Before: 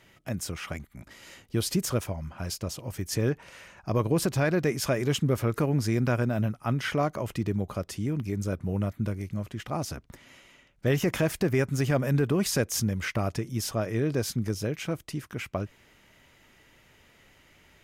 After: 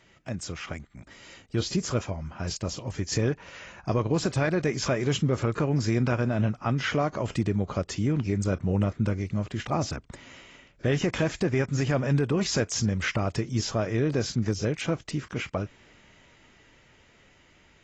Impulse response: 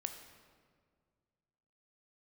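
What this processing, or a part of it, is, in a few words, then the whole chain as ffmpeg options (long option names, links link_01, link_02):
low-bitrate web radio: -af "dynaudnorm=framelen=580:gausssize=9:maxgain=5dB,alimiter=limit=-15dB:level=0:latency=1:release=377,volume=-1dB" -ar 24000 -c:a aac -b:a 24k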